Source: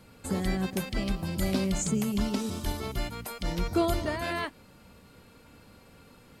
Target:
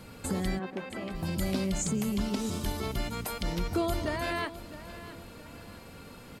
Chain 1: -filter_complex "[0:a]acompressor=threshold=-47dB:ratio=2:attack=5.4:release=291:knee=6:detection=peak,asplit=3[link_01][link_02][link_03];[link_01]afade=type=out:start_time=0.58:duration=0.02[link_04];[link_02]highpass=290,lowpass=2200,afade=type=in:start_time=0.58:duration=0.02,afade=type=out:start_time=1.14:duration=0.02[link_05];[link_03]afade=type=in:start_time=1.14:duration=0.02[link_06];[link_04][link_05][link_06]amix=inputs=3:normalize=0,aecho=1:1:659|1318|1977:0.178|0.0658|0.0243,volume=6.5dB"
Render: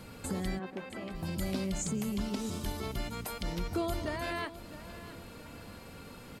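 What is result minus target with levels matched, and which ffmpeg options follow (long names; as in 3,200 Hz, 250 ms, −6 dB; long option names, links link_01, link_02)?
downward compressor: peak gain reduction +4 dB
-filter_complex "[0:a]acompressor=threshold=-39.5dB:ratio=2:attack=5.4:release=291:knee=6:detection=peak,asplit=3[link_01][link_02][link_03];[link_01]afade=type=out:start_time=0.58:duration=0.02[link_04];[link_02]highpass=290,lowpass=2200,afade=type=in:start_time=0.58:duration=0.02,afade=type=out:start_time=1.14:duration=0.02[link_05];[link_03]afade=type=in:start_time=1.14:duration=0.02[link_06];[link_04][link_05][link_06]amix=inputs=3:normalize=0,aecho=1:1:659|1318|1977:0.178|0.0658|0.0243,volume=6.5dB"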